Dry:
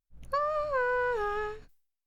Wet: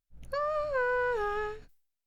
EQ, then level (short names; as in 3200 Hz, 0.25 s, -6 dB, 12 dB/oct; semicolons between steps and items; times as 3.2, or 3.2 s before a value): notch 1100 Hz, Q 8.2; 0.0 dB